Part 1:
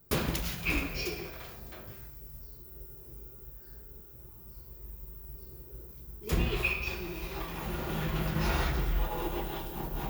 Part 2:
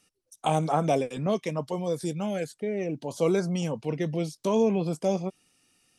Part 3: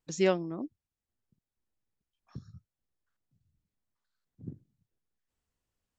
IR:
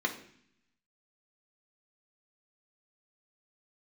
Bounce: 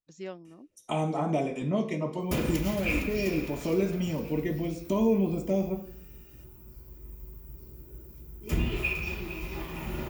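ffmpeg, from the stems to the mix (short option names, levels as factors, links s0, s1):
-filter_complex "[0:a]adelay=2200,volume=0.891,asplit=3[s0][s1][s2];[s1]volume=0.355[s3];[s2]volume=0.251[s4];[1:a]acompressor=threshold=0.00794:ratio=1.5,adelay=450,volume=1.12,asplit=2[s5][s6];[s6]volume=0.631[s7];[2:a]deesser=1,volume=0.211[s8];[3:a]atrim=start_sample=2205[s9];[s3][s7]amix=inputs=2:normalize=0[s10];[s10][s9]afir=irnorm=-1:irlink=0[s11];[s4]aecho=0:1:460|920|1380|1840|2300|2760|3220|3680:1|0.53|0.281|0.149|0.0789|0.0418|0.0222|0.0117[s12];[s0][s5][s8][s11][s12]amix=inputs=5:normalize=0"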